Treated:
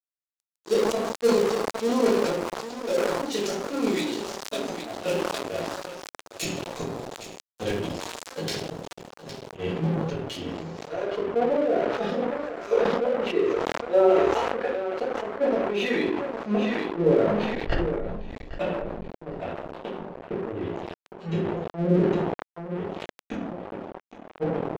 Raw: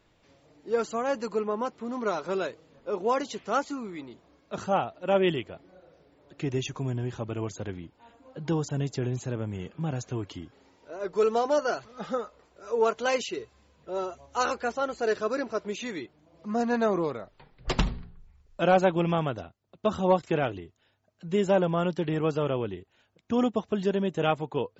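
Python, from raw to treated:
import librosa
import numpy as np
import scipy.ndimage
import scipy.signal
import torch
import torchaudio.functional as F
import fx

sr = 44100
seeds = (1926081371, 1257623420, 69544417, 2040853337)

y = fx.env_lowpass_down(x, sr, base_hz=320.0, full_db=-22.0)
y = fx.gate_flip(y, sr, shuts_db=-22.0, range_db=-38)
y = fx.peak_eq(y, sr, hz=1200.0, db=-10.5, octaves=1.1)
y = fx.notch(y, sr, hz=2100.0, q=12.0)
y = fx.echo_feedback(y, sr, ms=811, feedback_pct=28, wet_db=-10.5)
y = fx.room_shoebox(y, sr, seeds[0], volume_m3=64.0, walls='mixed', distance_m=1.6)
y = np.sign(y) * np.maximum(np.abs(y) - 10.0 ** (-42.5 / 20.0), 0.0)
y = fx.bass_treble(y, sr, bass_db=-15, treble_db=fx.steps((0.0, 14.0), (9.55, -2.0), (10.92, -11.0)))
y = fx.sustainer(y, sr, db_per_s=26.0)
y = y * librosa.db_to_amplitude(8.0)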